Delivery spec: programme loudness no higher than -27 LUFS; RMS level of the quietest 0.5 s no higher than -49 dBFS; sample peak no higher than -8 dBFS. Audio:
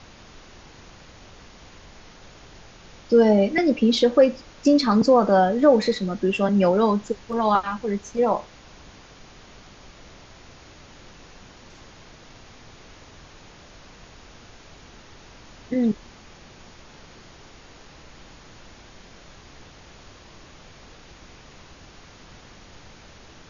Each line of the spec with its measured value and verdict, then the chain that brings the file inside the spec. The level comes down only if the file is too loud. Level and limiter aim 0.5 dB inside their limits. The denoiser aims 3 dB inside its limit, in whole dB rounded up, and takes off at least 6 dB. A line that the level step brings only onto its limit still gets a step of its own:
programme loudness -20.5 LUFS: fail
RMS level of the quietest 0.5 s -47 dBFS: fail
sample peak -5.0 dBFS: fail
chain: trim -7 dB

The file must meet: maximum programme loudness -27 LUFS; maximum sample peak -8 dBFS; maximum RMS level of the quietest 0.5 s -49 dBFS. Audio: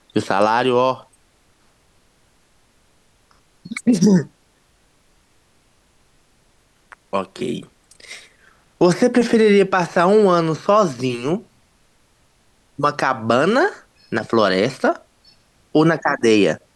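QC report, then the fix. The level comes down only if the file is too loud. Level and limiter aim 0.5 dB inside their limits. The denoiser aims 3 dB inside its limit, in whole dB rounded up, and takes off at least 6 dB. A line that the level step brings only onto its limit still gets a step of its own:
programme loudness -17.5 LUFS: fail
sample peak -5.0 dBFS: fail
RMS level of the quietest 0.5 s -59 dBFS: pass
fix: trim -10 dB

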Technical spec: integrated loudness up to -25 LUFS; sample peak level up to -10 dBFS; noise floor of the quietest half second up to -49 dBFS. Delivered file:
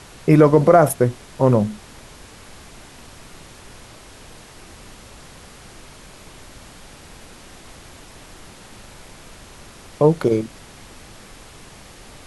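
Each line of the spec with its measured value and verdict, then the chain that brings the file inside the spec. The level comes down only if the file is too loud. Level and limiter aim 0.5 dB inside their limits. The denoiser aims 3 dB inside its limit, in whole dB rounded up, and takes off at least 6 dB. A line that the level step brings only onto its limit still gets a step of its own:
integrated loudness -16.5 LUFS: fail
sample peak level -2.0 dBFS: fail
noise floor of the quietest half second -42 dBFS: fail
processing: trim -9 dB

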